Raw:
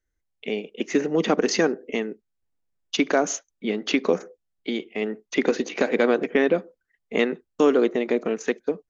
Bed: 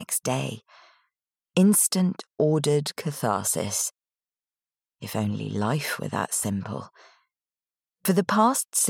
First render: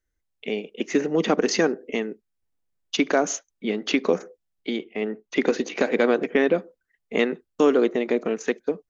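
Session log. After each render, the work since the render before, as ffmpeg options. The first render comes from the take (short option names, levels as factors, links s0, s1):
-filter_complex "[0:a]asettb=1/sr,asplit=3[s0][s1][s2];[s0]atrim=end=4.764[s3];[s1]atrim=start=4.76:end=5.36,asetpts=PTS-STARTPTS,afade=t=in:d=0.004:c=qsin,afade=t=out:st=0.596:d=0.004:c=qsin,highshelf=f=4600:g=-10.5[s4];[s2]atrim=start=5.356[s5];[s3][s4]acrossfade=d=0.004:c1=hsin:c2=qsin[s6];[s6][s5]acrossfade=d=0.004:c1=qsin:c2=hsin"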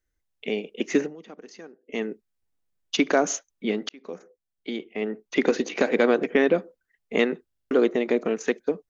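-filter_complex "[0:a]asplit=10[s0][s1][s2][s3][s4][s5][s6][s7][s8][s9];[s0]atrim=end=1.15,asetpts=PTS-STARTPTS,afade=t=out:st=0.98:d=0.17:silence=0.0707946[s10];[s1]atrim=start=1.15:end=1.86,asetpts=PTS-STARTPTS,volume=0.0708[s11];[s2]atrim=start=1.86:end=3.89,asetpts=PTS-STARTPTS,afade=t=in:d=0.17:silence=0.0707946,afade=t=out:st=2.026:d=0.004:c=hsin[s12];[s3]atrim=start=3.89:end=7.512,asetpts=PTS-STARTPTS,afade=t=in:d=1.32[s13];[s4]atrim=start=7.468:end=7.512[s14];[s5]atrim=start=7.468:end=7.512[s15];[s6]atrim=start=7.468:end=7.512[s16];[s7]atrim=start=7.468:end=7.512[s17];[s8]atrim=start=7.468:end=7.512[s18];[s9]atrim=start=7.708[s19];[s10][s11][s12][s13]concat=n=4:v=0:a=1[s20];[s20][s14]acrossfade=d=0.004:c1=hsin:c2=hsin[s21];[s21][s15]acrossfade=d=0.004:c1=hsin:c2=hsin[s22];[s22][s16]acrossfade=d=0.004:c1=hsin:c2=hsin[s23];[s23][s17]acrossfade=d=0.004:c1=hsin:c2=hsin[s24];[s24][s18]acrossfade=d=0.004:c1=hsin:c2=hsin[s25];[s25][s19]acrossfade=d=0.004:c1=hsin:c2=hsin"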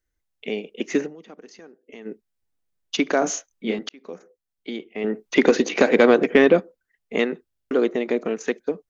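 -filter_complex "[0:a]asplit=3[s0][s1][s2];[s0]afade=t=out:st=1.49:d=0.02[s3];[s1]acompressor=threshold=0.0112:ratio=4:attack=3.2:release=140:knee=1:detection=peak,afade=t=in:st=1.49:d=0.02,afade=t=out:st=2.05:d=0.02[s4];[s2]afade=t=in:st=2.05:d=0.02[s5];[s3][s4][s5]amix=inputs=3:normalize=0,asettb=1/sr,asplit=3[s6][s7][s8];[s6]atrim=end=3.194[s9];[s7]atrim=start=3.19:end=3.79,asetpts=PTS-STARTPTS,afade=t=in:d=0.004:c=qsin,afade=t=out:st=0.596:d=0.004:c=qsin,asplit=2[s10][s11];[s11]adelay=27,volume=0.668[s12];[s10][s12]amix=inputs=2:normalize=0,atrim=end_sample=26460[s13];[s8]atrim=start=3.786[s14];[s9][s13]acrossfade=d=0.004:c1=hsin:c2=qsin[s15];[s15][s14]acrossfade=d=0.004:c1=qsin:c2=hsin,asettb=1/sr,asplit=3[s16][s17][s18];[s16]atrim=end=5.044[s19];[s17]atrim=start=5.04:end=6.6,asetpts=PTS-STARTPTS,afade=t=in:d=0.004:c=qsin,afade=t=out:st=1.556:d=0.004:c=qsin,acontrast=57[s20];[s18]atrim=start=6.596[s21];[s19][s20]acrossfade=d=0.004:c1=hsin:c2=qsin[s22];[s22][s21]acrossfade=d=0.004:c1=qsin:c2=hsin"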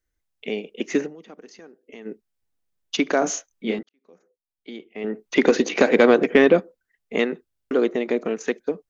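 -filter_complex "[0:a]asplit=2[s0][s1];[s0]atrim=end=3.83,asetpts=PTS-STARTPTS,afade=t=out:st=3.826:d=0.004:c=hsin[s2];[s1]atrim=start=3.83,asetpts=PTS-STARTPTS,afade=t=in:d=1.77[s3];[s2][s3]concat=n=2:v=0:a=1"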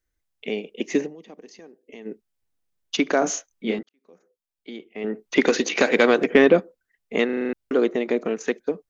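-filter_complex "[0:a]asettb=1/sr,asplit=3[s0][s1][s2];[s0]atrim=end=0.764[s3];[s1]atrim=start=0.76:end=2.11,asetpts=PTS-STARTPTS,afade=t=in:d=0.004:c=qsin,afade=t=out:st=1.346:d=0.004:c=qsin,equalizer=f=1400:w=4.4:g=-12[s4];[s2]atrim=start=2.106[s5];[s3][s4]acrossfade=d=0.004:c1=hsin:c2=qsin[s6];[s6][s5]acrossfade=d=0.004:c1=qsin:c2=hsin,asettb=1/sr,asplit=3[s7][s8][s9];[s7]atrim=end=5.404[s10];[s8]atrim=start=5.4:end=6.24,asetpts=PTS-STARTPTS,afade=t=in:d=0.004:c=qsin,afade=t=out:st=0.836:d=0.004:c=qsin,tiltshelf=f=1300:g=-4[s11];[s9]atrim=start=6.236[s12];[s10][s11]acrossfade=d=0.004:c1=hsin:c2=qsin[s13];[s13][s12]acrossfade=d=0.004:c1=qsin:c2=hsin,asplit=8[s14][s15][s16][s17][s18][s19][s20][s21];[s14]atrim=end=7.292[s22];[s15]atrim=start=7.248:end=7.292[s23];[s16]atrim=start=7.248:end=7.292[s24];[s17]atrim=start=7.248:end=7.292[s25];[s18]atrim=start=7.248:end=7.292[s26];[s19]atrim=start=7.248:end=7.292[s27];[s20]atrim=start=7.248:end=7.292[s28];[s21]atrim=start=7.528[s29];[s22][s23]acrossfade=d=0.004:c1=hsin:c2=hsin[s30];[s30][s24]acrossfade=d=0.004:c1=hsin:c2=hsin[s31];[s31][s25]acrossfade=d=0.004:c1=hsin:c2=hsin[s32];[s32][s26]acrossfade=d=0.004:c1=hsin:c2=hsin[s33];[s33][s27]acrossfade=d=0.004:c1=hsin:c2=hsin[s34];[s34][s28]acrossfade=d=0.004:c1=hsin:c2=hsin[s35];[s35][s29]acrossfade=d=0.004:c1=hsin:c2=hsin"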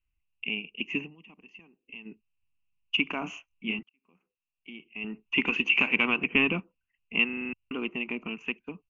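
-af "firequalizer=gain_entry='entry(110,0);entry(520,-24);entry(1000,-3);entry(1700,-18);entry(2700,12);entry(3800,-30);entry(6400,-27)':delay=0.05:min_phase=1"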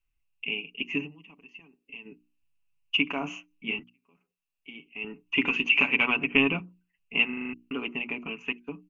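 -af "bandreject=f=60:t=h:w=6,bandreject=f=120:t=h:w=6,bandreject=f=180:t=h:w=6,bandreject=f=240:t=h:w=6,bandreject=f=300:t=h:w=6,bandreject=f=360:t=h:w=6,aecho=1:1:7.1:0.55"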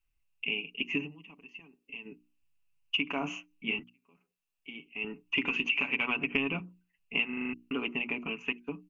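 -af "acompressor=threshold=0.0501:ratio=6"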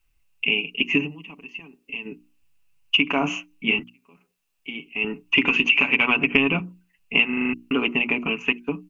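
-af "volume=3.55"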